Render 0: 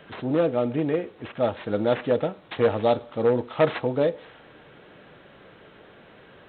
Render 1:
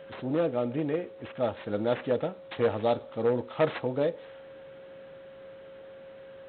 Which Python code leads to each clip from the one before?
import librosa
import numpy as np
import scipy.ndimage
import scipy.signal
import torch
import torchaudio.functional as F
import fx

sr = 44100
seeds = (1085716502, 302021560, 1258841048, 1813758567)

y = x + 10.0 ** (-40.0 / 20.0) * np.sin(2.0 * np.pi * 540.0 * np.arange(len(x)) / sr)
y = F.gain(torch.from_numpy(y), -5.0).numpy()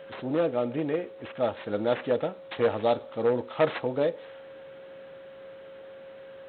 y = fx.low_shelf(x, sr, hz=200.0, db=-6.5)
y = F.gain(torch.from_numpy(y), 2.5).numpy()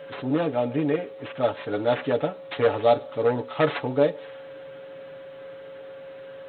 y = x + 0.77 * np.pad(x, (int(7.0 * sr / 1000.0), 0))[:len(x)]
y = F.gain(torch.from_numpy(y), 2.0).numpy()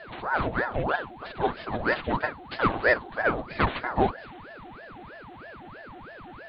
y = fx.ring_lfo(x, sr, carrier_hz=700.0, swing_pct=75, hz=3.1)